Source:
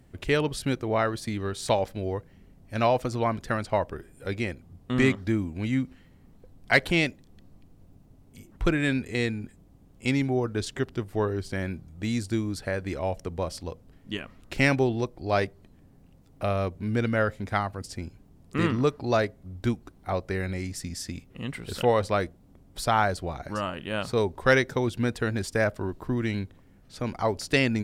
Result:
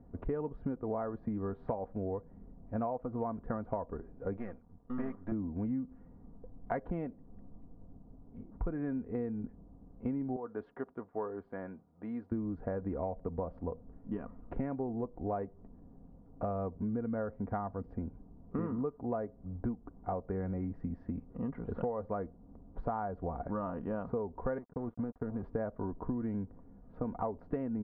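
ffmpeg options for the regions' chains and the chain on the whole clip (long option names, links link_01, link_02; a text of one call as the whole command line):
ffmpeg -i in.wav -filter_complex "[0:a]asettb=1/sr,asplit=3[link_01][link_02][link_03];[link_01]atrim=end=4.374[link_04];[link_02]atrim=start=4.37:end=5.32,asetpts=PTS-STARTPTS,afade=type=in:duration=0.004:curve=qsin,afade=type=out:start_time=0.946:duration=0.004:curve=qsin,aeval=exprs='if(lt(val(0),0),0.251*val(0),val(0))':channel_layout=same,tiltshelf=frequency=1200:gain=-6.5[link_05];[link_03]atrim=start=5.316[link_06];[link_04][link_05]acrossfade=duration=0.004:curve1=hsin:curve2=qsin[link_07];[link_07][link_06]acrossfade=duration=0.004:curve1=qsin:curve2=hsin,asettb=1/sr,asplit=3[link_08][link_09][link_10];[link_08]atrim=end=10.364[link_11];[link_09]atrim=start=10.36:end=12.32,asetpts=PTS-STARTPTS,afade=type=in:duration=0.004:curve=qsin,afade=type=out:start_time=1.956:duration=0.004:curve=qsin,agate=range=-33dB:threshold=-44dB:ratio=3:release=100:detection=peak,highpass=frequency=1000:poles=1[link_12];[link_10]atrim=start=12.316[link_13];[link_11][link_12]acrossfade=duration=0.004:curve1=hsin:curve2=qsin[link_14];[link_14][link_13]acrossfade=duration=0.004:curve1=qsin:curve2=hsin,asettb=1/sr,asplit=3[link_15][link_16][link_17];[link_15]atrim=end=24.584[link_18];[link_16]atrim=start=24.58:end=25.43,asetpts=PTS-STARTPTS,afade=type=in:duration=0.004:curve=qsin,afade=type=out:start_time=0.846:duration=0.004:curve=qsin,acrossover=split=390|3900[link_19][link_20][link_21];[link_19]acompressor=threshold=-30dB:ratio=4[link_22];[link_20]acompressor=threshold=-41dB:ratio=4[link_23];[link_21]acompressor=threshold=-46dB:ratio=4[link_24];[link_22][link_23][link_24]amix=inputs=3:normalize=0,aeval=exprs='sgn(val(0))*max(abs(val(0))-0.00794,0)':channel_layout=same[link_25];[link_17]atrim=start=25.426[link_26];[link_18][link_25]acrossfade=duration=0.004:curve1=hsin:curve2=qsin[link_27];[link_27][link_26]acrossfade=duration=0.004:curve1=qsin:curve2=hsin,lowpass=frequency=1100:width=0.5412,lowpass=frequency=1100:width=1.3066,aecho=1:1:4.2:0.44,acompressor=threshold=-32dB:ratio=10" out.wav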